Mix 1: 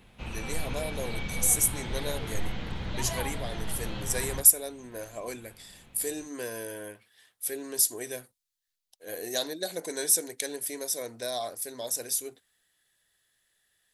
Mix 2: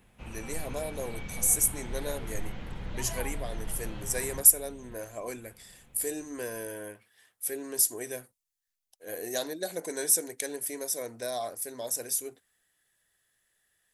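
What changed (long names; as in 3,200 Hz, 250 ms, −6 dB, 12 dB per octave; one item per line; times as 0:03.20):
first sound −5.0 dB
second sound: unmuted
master: add parametric band 3,900 Hz −6.5 dB 0.82 octaves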